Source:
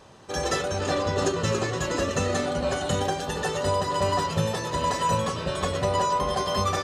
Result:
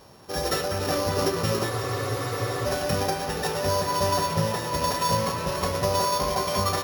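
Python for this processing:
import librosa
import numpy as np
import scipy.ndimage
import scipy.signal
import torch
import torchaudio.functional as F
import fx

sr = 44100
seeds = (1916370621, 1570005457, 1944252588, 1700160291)

y = np.r_[np.sort(x[:len(x) // 8 * 8].reshape(-1, 8), axis=1).ravel(), x[len(x) // 8 * 8:]]
y = fx.echo_wet_bandpass(y, sr, ms=199, feedback_pct=85, hz=1500.0, wet_db=-9.5)
y = fx.spec_freeze(y, sr, seeds[0], at_s=1.72, hold_s=0.93)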